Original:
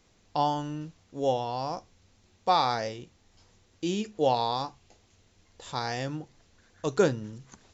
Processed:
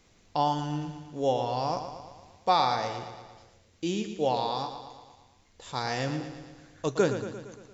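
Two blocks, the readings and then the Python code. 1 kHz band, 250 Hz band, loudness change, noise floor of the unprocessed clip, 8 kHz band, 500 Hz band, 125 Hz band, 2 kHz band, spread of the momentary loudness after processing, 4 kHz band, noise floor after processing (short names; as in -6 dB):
+0.5 dB, +0.5 dB, 0.0 dB, -65 dBFS, n/a, -0.5 dB, +1.0 dB, +1.0 dB, 18 LU, 0.0 dB, -62 dBFS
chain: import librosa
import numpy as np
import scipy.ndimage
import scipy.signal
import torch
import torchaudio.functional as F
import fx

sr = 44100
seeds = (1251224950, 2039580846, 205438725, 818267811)

y = fx.peak_eq(x, sr, hz=2200.0, db=2.5, octaves=0.29)
y = fx.rider(y, sr, range_db=4, speed_s=0.5)
y = fx.echo_feedback(y, sr, ms=115, feedback_pct=59, wet_db=-9.5)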